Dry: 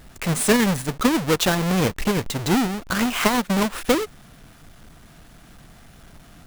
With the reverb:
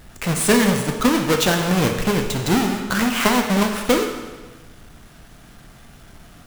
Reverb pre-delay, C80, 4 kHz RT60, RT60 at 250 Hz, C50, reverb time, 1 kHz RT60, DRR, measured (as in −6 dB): 19 ms, 7.5 dB, 1.2 s, 1.3 s, 5.5 dB, 1.3 s, 1.3 s, 3.5 dB